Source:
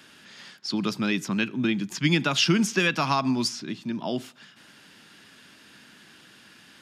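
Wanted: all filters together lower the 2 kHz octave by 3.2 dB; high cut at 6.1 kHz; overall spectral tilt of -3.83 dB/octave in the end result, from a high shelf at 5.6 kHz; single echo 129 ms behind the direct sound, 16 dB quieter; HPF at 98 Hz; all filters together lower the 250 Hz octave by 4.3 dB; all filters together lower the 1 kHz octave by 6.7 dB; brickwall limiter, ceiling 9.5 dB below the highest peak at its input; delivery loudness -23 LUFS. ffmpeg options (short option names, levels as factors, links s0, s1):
-af "highpass=98,lowpass=6100,equalizer=f=250:t=o:g=-5,equalizer=f=1000:t=o:g=-7.5,equalizer=f=2000:t=o:g=-3.5,highshelf=f=5600:g=7,alimiter=limit=0.106:level=0:latency=1,aecho=1:1:129:0.158,volume=2.51"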